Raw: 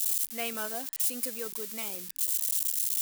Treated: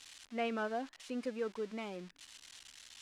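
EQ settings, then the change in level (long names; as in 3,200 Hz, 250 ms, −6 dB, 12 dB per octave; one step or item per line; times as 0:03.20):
head-to-tape spacing loss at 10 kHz 37 dB
+4.0 dB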